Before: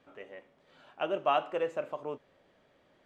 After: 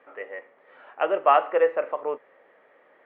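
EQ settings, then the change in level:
loudspeaker in its box 390–2,500 Hz, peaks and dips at 480 Hz +7 dB, 830 Hz +3 dB, 1,200 Hz +5 dB, 1,900 Hz +8 dB
+6.5 dB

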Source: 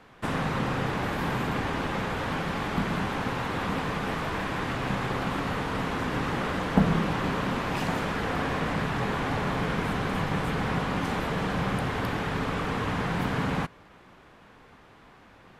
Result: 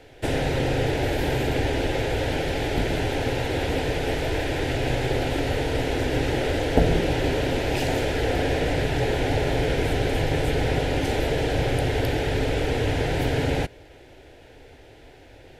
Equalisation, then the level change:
low-shelf EQ 330 Hz +5 dB
phaser with its sweep stopped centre 470 Hz, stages 4
+7.5 dB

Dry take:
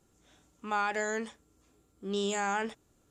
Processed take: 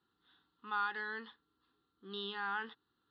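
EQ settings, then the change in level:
high-pass filter 670 Hz 6 dB per octave
elliptic low-pass filter 4,200 Hz, stop band 40 dB
phaser with its sweep stopped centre 2,300 Hz, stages 6
−1.0 dB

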